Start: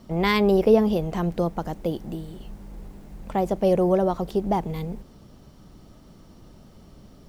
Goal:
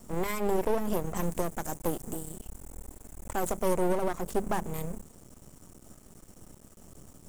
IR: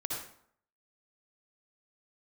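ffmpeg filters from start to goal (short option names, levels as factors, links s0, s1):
-filter_complex "[0:a]highshelf=f=5800:t=q:w=3:g=11,bandreject=f=50:t=h:w=6,bandreject=f=100:t=h:w=6,bandreject=f=150:t=h:w=6,bandreject=f=200:t=h:w=6,alimiter=limit=0.178:level=0:latency=1:release=258,aeval=exprs='max(val(0),0)':c=same,asettb=1/sr,asplit=3[s0][s1][s2];[s0]atrim=end=1.134[s3];[s1]atrim=start=1.13:end=3.74,asetpts=PTS-STARTPTS,afade=t=in:d=0.004:c=qsin,afade=t=out:st=2.606:d=0.004:c=qsin,adynamicequalizer=threshold=0.00251:dfrequency=4300:dqfactor=0.7:tfrequency=4300:tqfactor=0.7:attack=5:release=100:ratio=0.375:range=2:mode=boostabove:tftype=highshelf[s4];[s2]atrim=start=3.736[s5];[s3][s4]acrossfade=d=0.004:c1=hsin:c2=qsin[s6];[s6][s5]acrossfade=d=0.004:c1=qsin:c2=hsin"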